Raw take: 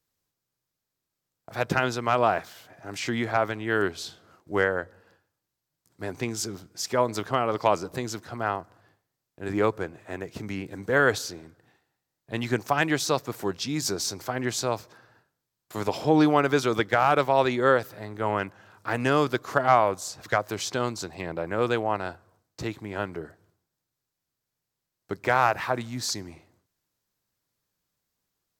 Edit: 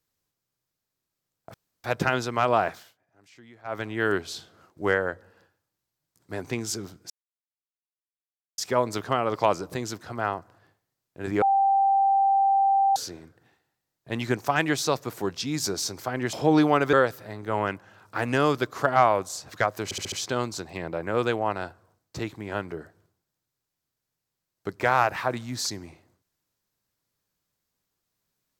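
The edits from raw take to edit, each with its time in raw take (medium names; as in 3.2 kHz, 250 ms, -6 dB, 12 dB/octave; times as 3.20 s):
1.54 s: insert room tone 0.30 s
2.45–3.54 s: dip -23 dB, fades 0.20 s
6.80 s: insert silence 1.48 s
9.64–11.18 s: bleep 785 Hz -17.5 dBFS
14.55–15.96 s: delete
16.56–17.65 s: delete
20.56 s: stutter 0.07 s, 5 plays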